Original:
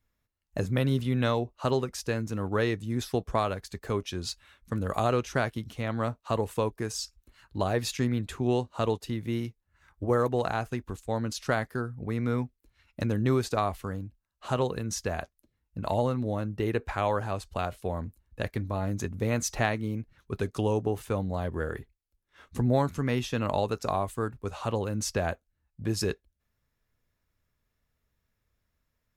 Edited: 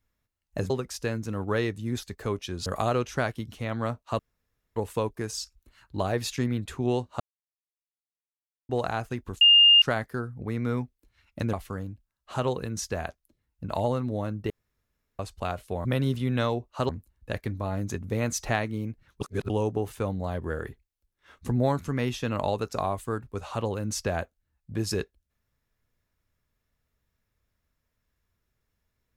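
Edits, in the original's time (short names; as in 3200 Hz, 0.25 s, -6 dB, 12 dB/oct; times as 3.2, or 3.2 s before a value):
0.7–1.74 move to 17.99
3.07–3.67 cut
4.3–4.84 cut
6.37 insert room tone 0.57 s
8.81–10.3 mute
11.02–11.43 bleep 2820 Hz -12.5 dBFS
13.14–13.67 cut
16.64–17.33 room tone
20.31–20.6 reverse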